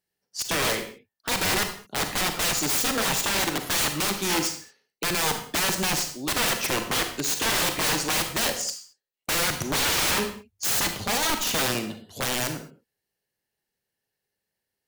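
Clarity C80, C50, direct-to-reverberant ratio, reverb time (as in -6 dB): 11.0 dB, 8.0 dB, 6.0 dB, not exponential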